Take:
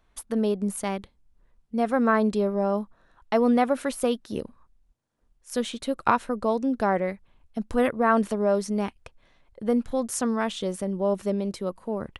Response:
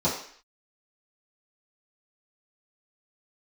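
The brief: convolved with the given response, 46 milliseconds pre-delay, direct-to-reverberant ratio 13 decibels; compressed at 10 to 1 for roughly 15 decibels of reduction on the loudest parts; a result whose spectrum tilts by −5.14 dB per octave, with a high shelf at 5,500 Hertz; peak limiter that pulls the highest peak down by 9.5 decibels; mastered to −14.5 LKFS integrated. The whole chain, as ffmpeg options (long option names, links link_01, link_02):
-filter_complex "[0:a]highshelf=frequency=5500:gain=-5.5,acompressor=threshold=-32dB:ratio=10,alimiter=level_in=3.5dB:limit=-24dB:level=0:latency=1,volume=-3.5dB,asplit=2[link_01][link_02];[1:a]atrim=start_sample=2205,adelay=46[link_03];[link_02][link_03]afir=irnorm=-1:irlink=0,volume=-25.5dB[link_04];[link_01][link_04]amix=inputs=2:normalize=0,volume=24dB"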